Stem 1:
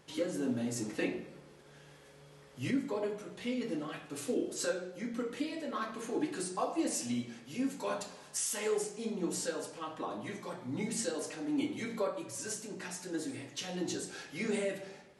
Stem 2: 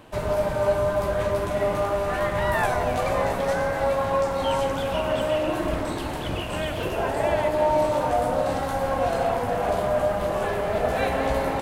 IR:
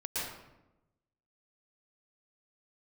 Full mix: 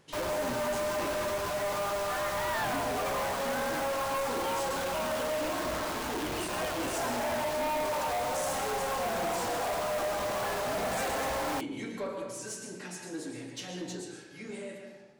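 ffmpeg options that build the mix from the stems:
-filter_complex "[0:a]volume=-3dB,afade=t=out:st=13.74:d=0.43:silence=0.446684,asplit=2[a][b];[b]volume=-5.5dB[c];[1:a]equalizer=f=1.2k:t=o:w=2.5:g=12,acrusher=bits=3:mix=0:aa=0.000001,volume=-10.5dB[d];[2:a]atrim=start_sample=2205[e];[c][e]afir=irnorm=-1:irlink=0[f];[a][d][f]amix=inputs=3:normalize=0,asoftclip=type=tanh:threshold=-28.5dB"

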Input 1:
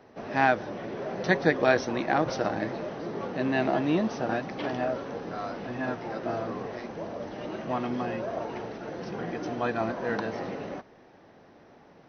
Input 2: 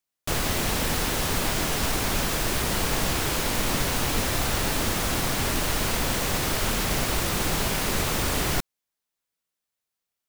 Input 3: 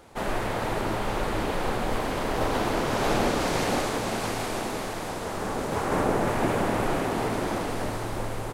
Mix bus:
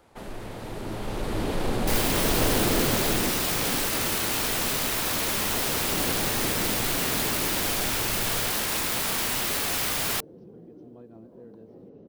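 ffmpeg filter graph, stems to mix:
-filter_complex "[0:a]firequalizer=gain_entry='entry(440,0);entry(680,-14);entry(1900,-26);entry(3100,-19)':delay=0.05:min_phase=1,acompressor=threshold=-40dB:ratio=4,adelay=1350,volume=-17dB[a];[1:a]highshelf=f=4.9k:g=-4.5,aeval=exprs='(mod(16.8*val(0)+1,2)-1)/16.8':c=same,adelay=1600,volume=-9.5dB[b];[2:a]acrossover=split=470|3000[c][d][e];[d]acompressor=threshold=-38dB:ratio=6[f];[c][f][e]amix=inputs=3:normalize=0,asoftclip=type=tanh:threshold=-19.5dB,volume=-6.5dB,afade=t=out:st=2.79:d=0.57:silence=0.375837[g];[a][b][g]amix=inputs=3:normalize=0,equalizer=f=6.8k:w=1.5:g=-2.5,dynaudnorm=f=280:g=9:m=12dB"

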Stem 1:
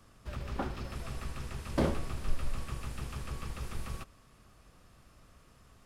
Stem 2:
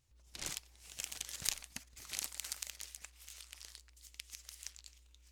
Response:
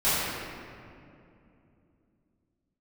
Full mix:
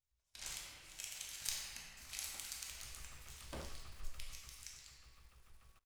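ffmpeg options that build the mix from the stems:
-filter_complex "[0:a]acrusher=bits=9:dc=4:mix=0:aa=0.000001,adelay=1750,volume=-13.5dB,afade=t=in:st=2.63:d=0.34:silence=0.334965,afade=t=out:st=4.01:d=0.73:silence=0.334965[a];[1:a]agate=range=-11dB:threshold=-59dB:ratio=16:detection=peak,volume=-8.5dB,asplit=2[b][c];[c]volume=-9.5dB[d];[2:a]atrim=start_sample=2205[e];[d][e]afir=irnorm=-1:irlink=0[f];[a][b][f]amix=inputs=3:normalize=0,equalizer=f=230:w=0.48:g=-10.5"

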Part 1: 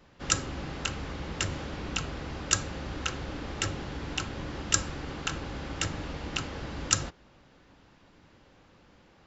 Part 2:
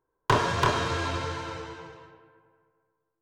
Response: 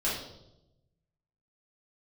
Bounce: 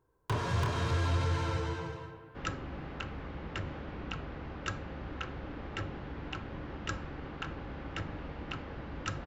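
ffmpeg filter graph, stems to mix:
-filter_complex "[0:a]lowpass=2.3k,adelay=2150,volume=-4.5dB[a];[1:a]acompressor=threshold=-32dB:ratio=6,asoftclip=type=tanh:threshold=-33dB,equalizer=f=79:w=0.51:g=11.5,volume=2.5dB[b];[a][b]amix=inputs=2:normalize=0"

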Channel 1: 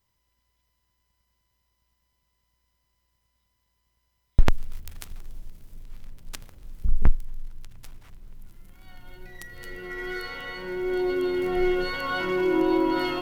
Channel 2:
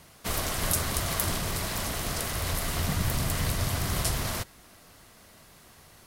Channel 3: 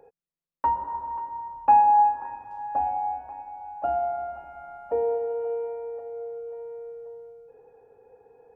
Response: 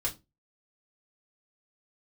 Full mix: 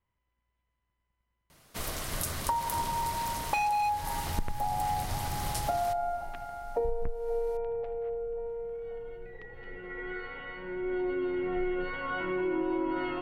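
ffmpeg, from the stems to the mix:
-filter_complex "[0:a]lowpass=f=2.7k:w=0.5412,lowpass=f=2.7k:w=1.3066,volume=-5dB[a];[1:a]adelay=1500,volume=-7dB,asplit=2[b][c];[c]volume=-17.5dB[d];[2:a]aeval=exprs='0.168*(abs(mod(val(0)/0.168+3,4)-2)-1)':c=same,adelay=1850,volume=1dB[e];[3:a]atrim=start_sample=2205[f];[d][f]afir=irnorm=-1:irlink=0[g];[a][b][e][g]amix=inputs=4:normalize=0,acompressor=threshold=-26dB:ratio=16"

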